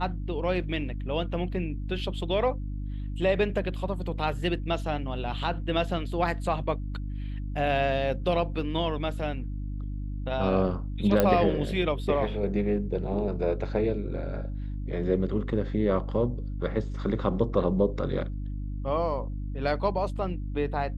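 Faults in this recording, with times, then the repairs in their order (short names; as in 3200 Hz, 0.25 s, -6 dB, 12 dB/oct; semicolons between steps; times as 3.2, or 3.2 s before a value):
hum 50 Hz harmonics 6 -33 dBFS
11.2 pop -9 dBFS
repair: de-click; de-hum 50 Hz, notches 6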